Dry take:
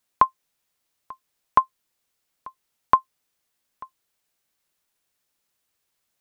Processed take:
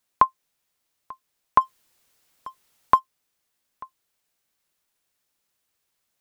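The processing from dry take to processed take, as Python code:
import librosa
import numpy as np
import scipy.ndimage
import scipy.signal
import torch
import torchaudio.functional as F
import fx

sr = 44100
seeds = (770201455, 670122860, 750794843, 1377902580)

y = fx.law_mismatch(x, sr, coded='mu', at=(1.6, 2.98), fade=0.02)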